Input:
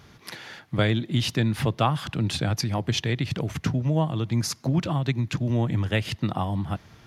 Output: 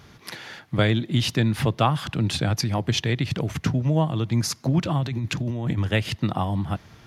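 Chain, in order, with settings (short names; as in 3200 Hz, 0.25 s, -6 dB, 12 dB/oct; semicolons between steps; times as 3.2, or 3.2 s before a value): 5.01–5.78 negative-ratio compressor -28 dBFS, ratio -1; gain +2 dB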